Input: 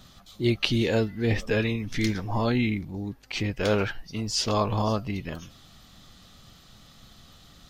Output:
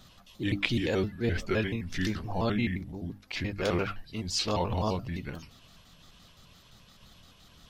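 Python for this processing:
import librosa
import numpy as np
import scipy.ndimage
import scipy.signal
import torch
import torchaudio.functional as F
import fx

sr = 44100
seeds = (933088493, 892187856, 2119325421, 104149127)

y = fx.pitch_trill(x, sr, semitones=-3.0, every_ms=86)
y = fx.hum_notches(y, sr, base_hz=50, count=6)
y = F.gain(torch.from_numpy(y), -3.0).numpy()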